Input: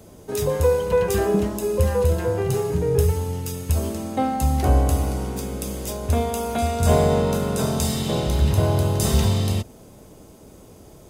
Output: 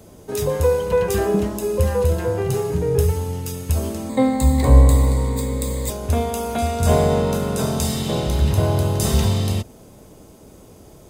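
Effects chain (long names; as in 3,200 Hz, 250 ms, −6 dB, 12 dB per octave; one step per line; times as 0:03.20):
0:04.09–0:05.90: EQ curve with evenly spaced ripples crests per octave 1, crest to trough 15 dB
level +1 dB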